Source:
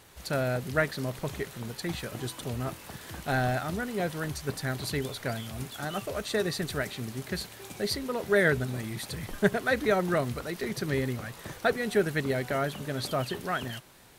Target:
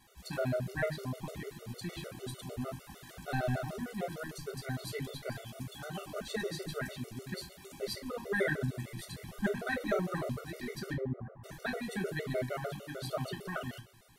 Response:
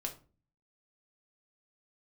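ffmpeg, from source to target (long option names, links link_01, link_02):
-filter_complex "[0:a]asettb=1/sr,asplit=3[link_01][link_02][link_03];[link_01]atrim=end=10.934[link_04];[link_02]atrim=start=10.93:end=11.44,asetpts=PTS-STARTPTS,afade=type=in:duration=0.004:curve=qsin,afade=type=out:start_time=0.506:duration=0.004:curve=qsin,lowpass=frequency=1200:width=0.5412,lowpass=frequency=1200:width=1.3066[link_05];[link_03]atrim=start=11.436[link_06];[link_04][link_05]acrossfade=duration=0.004:curve1=hsin:curve2=qsin[link_07];[link_07][link_06]acrossfade=duration=0.004:curve1=qsin:curve2=hsin,bandreject=frequency=280.2:width_type=h:width=4,bandreject=frequency=560.4:width_type=h:width=4,bandreject=frequency=840.6:width_type=h:width=4,bandreject=frequency=1120.8:width_type=h:width=4,bandreject=frequency=1401:width_type=h:width=4,bandreject=frequency=1681.2:width_type=h:width=4,bandreject=frequency=1961.4:width_type=h:width=4,bandreject=frequency=2241.6:width_type=h:width=4,bandreject=frequency=2521.8:width_type=h:width=4,bandreject=frequency=2802:width_type=h:width=4,bandreject=frequency=3082.2:width_type=h:width=4,bandreject=frequency=3362.4:width_type=h:width=4,bandreject=frequency=3642.6:width_type=h:width=4,bandreject=frequency=3922.8:width_type=h:width=4,bandreject=frequency=4203:width_type=h:width=4,bandreject=frequency=4483.2:width_type=h:width=4[link_08];[1:a]atrim=start_sample=2205[link_09];[link_08][link_09]afir=irnorm=-1:irlink=0,afftfilt=real='re*gt(sin(2*PI*6.6*pts/sr)*(1-2*mod(floor(b*sr/1024/380),2)),0)':imag='im*gt(sin(2*PI*6.6*pts/sr)*(1-2*mod(floor(b*sr/1024/380),2)),0)':win_size=1024:overlap=0.75,volume=-4dB"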